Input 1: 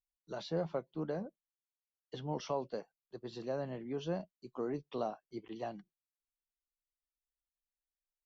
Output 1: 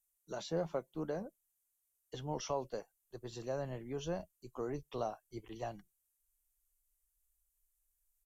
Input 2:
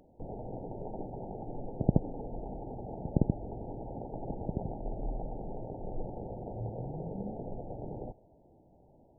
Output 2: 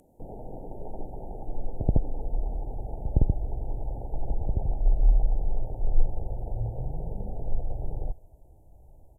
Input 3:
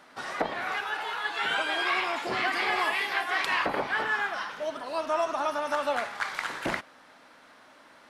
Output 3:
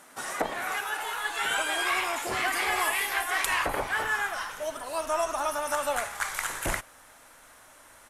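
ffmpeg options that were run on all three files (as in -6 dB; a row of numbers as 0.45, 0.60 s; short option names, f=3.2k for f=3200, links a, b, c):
-af "asubboost=boost=11.5:cutoff=64,aexciter=amount=5.3:drive=7:freq=6.5k,aresample=32000,aresample=44100"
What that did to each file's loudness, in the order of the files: -1.0, +6.0, 0.0 LU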